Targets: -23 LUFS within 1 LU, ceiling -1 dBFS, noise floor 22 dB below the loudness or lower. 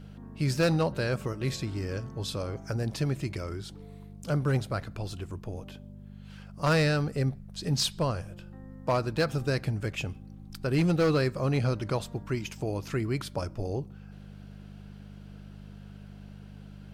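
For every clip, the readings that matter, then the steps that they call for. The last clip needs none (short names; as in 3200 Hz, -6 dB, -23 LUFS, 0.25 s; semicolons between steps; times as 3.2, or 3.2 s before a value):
clipped 0.5%; flat tops at -19.0 dBFS; hum 50 Hz; harmonics up to 200 Hz; hum level -44 dBFS; loudness -30.0 LUFS; peak -19.0 dBFS; loudness target -23.0 LUFS
-> clip repair -19 dBFS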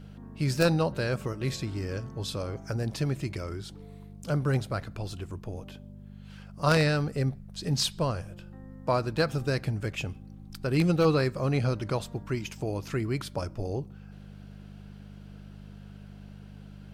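clipped 0.0%; hum 50 Hz; harmonics up to 200 Hz; hum level -44 dBFS
-> de-hum 50 Hz, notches 4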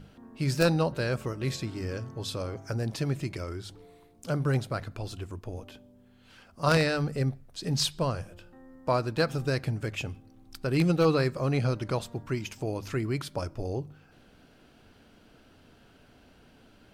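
hum none; loudness -30.0 LUFS; peak -9.0 dBFS; loudness target -23.0 LUFS
-> gain +7 dB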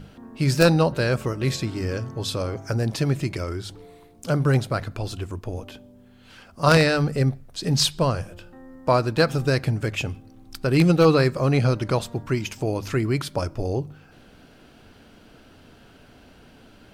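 loudness -23.0 LUFS; peak -2.0 dBFS; noise floor -51 dBFS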